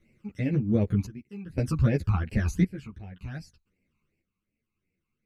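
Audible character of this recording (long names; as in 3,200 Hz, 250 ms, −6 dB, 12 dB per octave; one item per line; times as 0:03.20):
phaser sweep stages 12, 2.7 Hz, lowest notch 550–1,200 Hz
sample-and-hold tremolo 1.9 Hz, depth 95%
a shimmering, thickened sound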